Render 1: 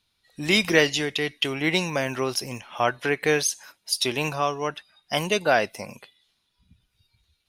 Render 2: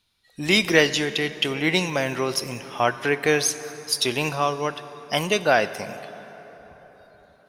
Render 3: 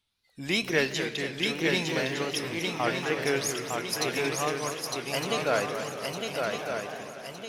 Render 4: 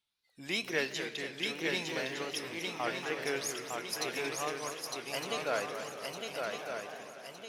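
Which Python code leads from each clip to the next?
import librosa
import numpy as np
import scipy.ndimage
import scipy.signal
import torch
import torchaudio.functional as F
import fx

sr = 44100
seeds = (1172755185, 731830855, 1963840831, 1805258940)

y1 = fx.rev_plate(x, sr, seeds[0], rt60_s=4.8, hf_ratio=0.55, predelay_ms=0, drr_db=13.0)
y1 = F.gain(torch.from_numpy(y1), 1.5).numpy()
y2 = fx.wow_flutter(y1, sr, seeds[1], rate_hz=2.1, depth_cents=130.0)
y2 = fx.echo_swing(y2, sr, ms=1210, ratio=3, feedback_pct=43, wet_db=-4)
y2 = fx.echo_warbled(y2, sr, ms=234, feedback_pct=61, rate_hz=2.8, cents=203, wet_db=-10)
y2 = F.gain(torch.from_numpy(y2), -8.5).numpy()
y3 = fx.low_shelf(y2, sr, hz=170.0, db=-12.0)
y3 = F.gain(torch.from_numpy(y3), -6.0).numpy()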